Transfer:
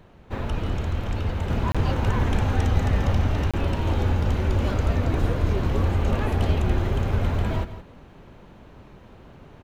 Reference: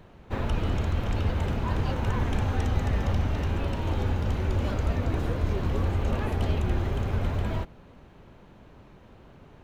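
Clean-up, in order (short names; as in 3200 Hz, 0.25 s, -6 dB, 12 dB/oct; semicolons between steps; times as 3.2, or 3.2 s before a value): 5.2–5.32 HPF 140 Hz 24 dB/oct; interpolate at 1.72/3.51, 26 ms; inverse comb 0.168 s -13 dB; 1.5 gain correction -4 dB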